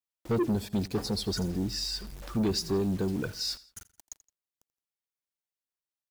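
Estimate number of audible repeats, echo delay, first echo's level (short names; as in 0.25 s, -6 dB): 2, 84 ms, -19.5 dB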